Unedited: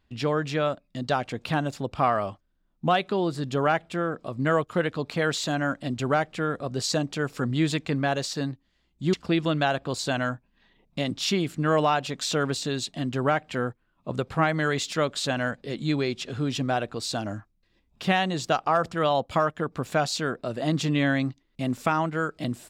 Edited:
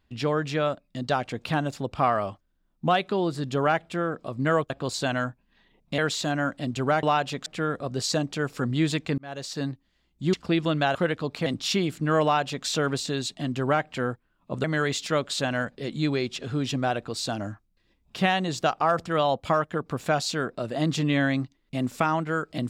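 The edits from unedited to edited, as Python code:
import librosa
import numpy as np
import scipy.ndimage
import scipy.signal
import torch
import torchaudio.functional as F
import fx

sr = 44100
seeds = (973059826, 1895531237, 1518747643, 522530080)

y = fx.edit(x, sr, fx.swap(start_s=4.7, length_s=0.51, other_s=9.75, other_length_s=1.28),
    fx.fade_in_span(start_s=7.98, length_s=0.48),
    fx.duplicate(start_s=11.8, length_s=0.43, to_s=6.26),
    fx.cut(start_s=14.21, length_s=0.29), tone=tone)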